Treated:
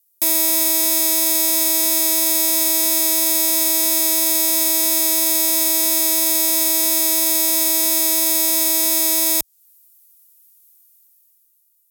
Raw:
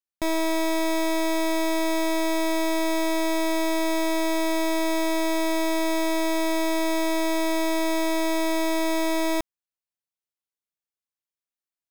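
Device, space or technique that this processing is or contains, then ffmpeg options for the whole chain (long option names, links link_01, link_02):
FM broadcast chain: -filter_complex "[0:a]highpass=59,dynaudnorm=framelen=150:gausssize=13:maxgain=10dB,acrossover=split=1100|3400|7800[link_01][link_02][link_03][link_04];[link_01]acompressor=threshold=-22dB:ratio=4[link_05];[link_02]acompressor=threshold=-37dB:ratio=4[link_06];[link_03]acompressor=threshold=-32dB:ratio=4[link_07];[link_04]acompressor=threshold=-42dB:ratio=4[link_08];[link_05][link_06][link_07][link_08]amix=inputs=4:normalize=0,aemphasis=mode=production:type=75fm,alimiter=limit=-14.5dB:level=0:latency=1:release=11,asoftclip=type=hard:threshold=-17dB,lowpass=frequency=15000:width=0.5412,lowpass=frequency=15000:width=1.3066,aemphasis=mode=production:type=75fm,volume=1.5dB"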